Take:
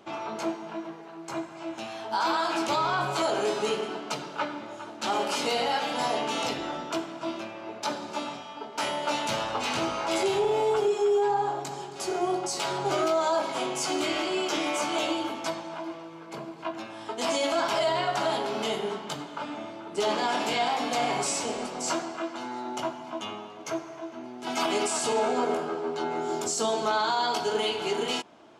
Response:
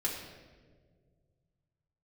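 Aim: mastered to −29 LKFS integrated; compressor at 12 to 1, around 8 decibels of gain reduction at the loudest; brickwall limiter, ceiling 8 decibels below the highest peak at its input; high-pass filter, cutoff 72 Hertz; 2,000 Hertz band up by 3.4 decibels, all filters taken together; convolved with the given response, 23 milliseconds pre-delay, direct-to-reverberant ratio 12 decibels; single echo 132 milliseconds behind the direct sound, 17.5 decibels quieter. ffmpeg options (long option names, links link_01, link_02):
-filter_complex "[0:a]highpass=72,equalizer=frequency=2000:width_type=o:gain=4.5,acompressor=threshold=-29dB:ratio=12,alimiter=level_in=2.5dB:limit=-24dB:level=0:latency=1,volume=-2.5dB,aecho=1:1:132:0.133,asplit=2[link_01][link_02];[1:a]atrim=start_sample=2205,adelay=23[link_03];[link_02][link_03]afir=irnorm=-1:irlink=0,volume=-16.5dB[link_04];[link_01][link_04]amix=inputs=2:normalize=0,volume=6dB"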